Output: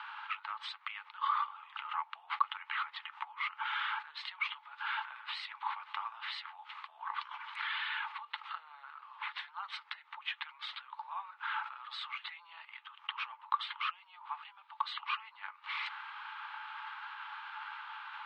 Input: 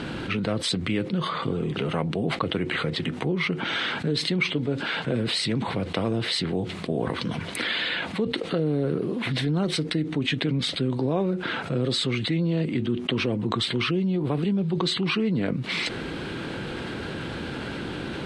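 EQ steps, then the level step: rippled Chebyshev high-pass 840 Hz, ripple 6 dB; LPF 1400 Hz 12 dB/oct; +2.5 dB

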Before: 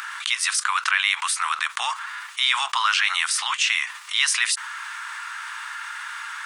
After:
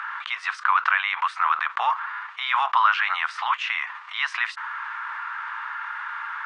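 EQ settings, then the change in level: tape spacing loss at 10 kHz 39 dB; bell 890 Hz +9.5 dB 2.8 oct; 0.0 dB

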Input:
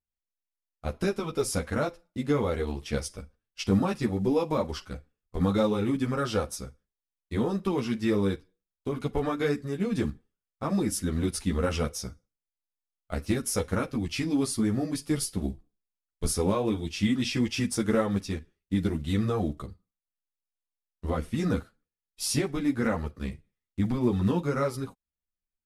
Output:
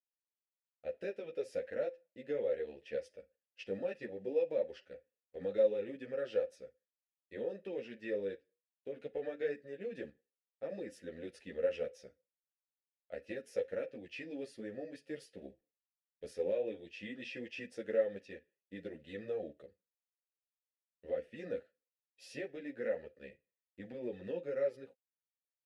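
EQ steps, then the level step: vowel filter e; 0.0 dB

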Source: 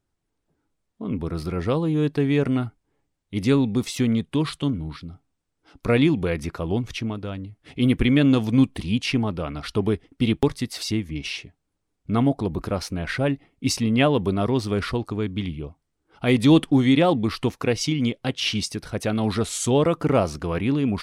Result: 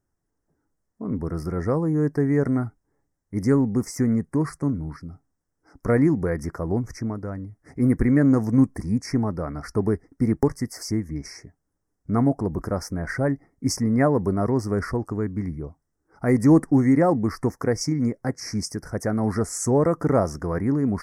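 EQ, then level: elliptic band-stop 1900–5300 Hz, stop band 50 dB; 0.0 dB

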